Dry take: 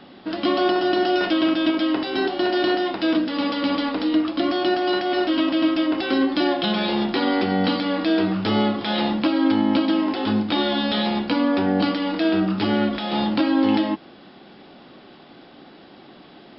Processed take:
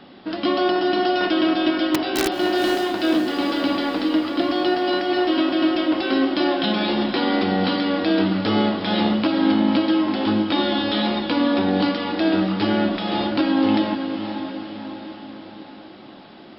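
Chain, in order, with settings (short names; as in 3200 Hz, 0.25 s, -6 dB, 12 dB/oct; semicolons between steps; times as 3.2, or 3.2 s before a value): 1.92–2.39 wrapped overs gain 14 dB; diffused feedback echo 0.507 s, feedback 57%, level -8 dB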